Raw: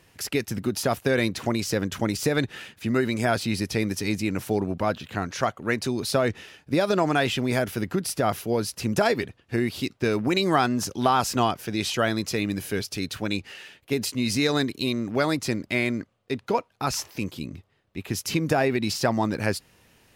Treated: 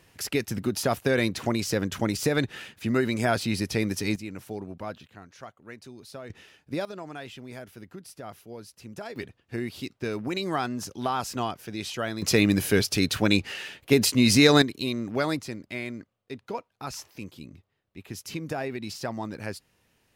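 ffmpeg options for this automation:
-af "asetnsamples=n=441:p=0,asendcmd='4.16 volume volume -11dB;5.07 volume volume -18.5dB;6.3 volume volume -8dB;6.85 volume volume -17dB;9.16 volume volume -7dB;12.22 volume volume 6dB;14.62 volume volume -3dB;15.42 volume volume -9.5dB',volume=-1dB"

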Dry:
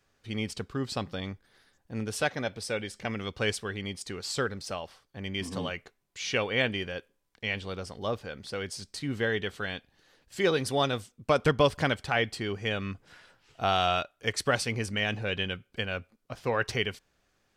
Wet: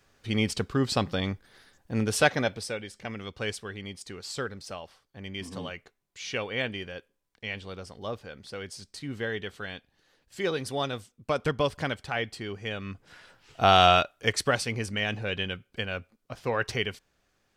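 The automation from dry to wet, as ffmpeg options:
-af "volume=18dB,afade=t=out:st=2.35:d=0.42:silence=0.316228,afade=t=in:st=12.83:d=1.02:silence=0.266073,afade=t=out:st=13.85:d=0.72:silence=0.398107"

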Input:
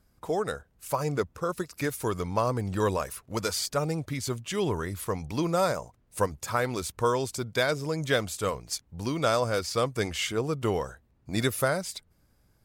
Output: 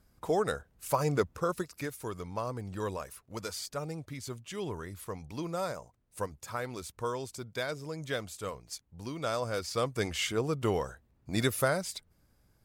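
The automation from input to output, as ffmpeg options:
-af "volume=7dB,afade=t=out:st=1.4:d=0.51:silence=0.354813,afade=t=in:st=9.19:d=1.01:silence=0.446684"

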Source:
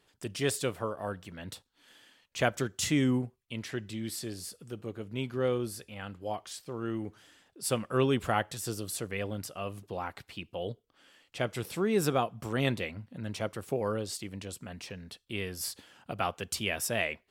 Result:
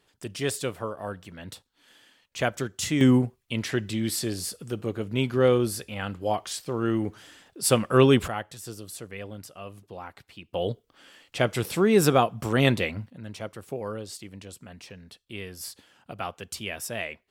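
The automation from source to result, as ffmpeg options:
-af "asetnsamples=n=441:p=0,asendcmd='3.01 volume volume 9dB;8.28 volume volume -3.5dB;10.54 volume volume 8dB;13.1 volume volume -2dB',volume=1.5dB"

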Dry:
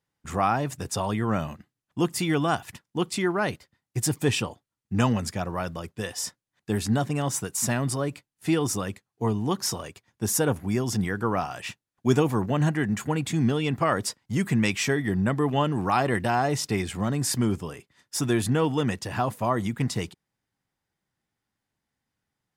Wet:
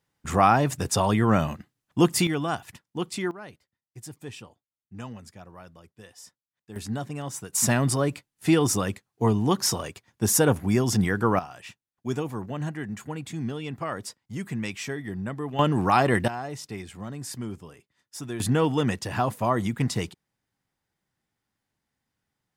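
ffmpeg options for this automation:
-af "asetnsamples=n=441:p=0,asendcmd='2.27 volume volume -3.5dB;3.31 volume volume -16dB;6.76 volume volume -7dB;7.53 volume volume 3.5dB;11.39 volume volume -8dB;15.59 volume volume 3dB;16.28 volume volume -10dB;18.4 volume volume 1dB',volume=5dB"

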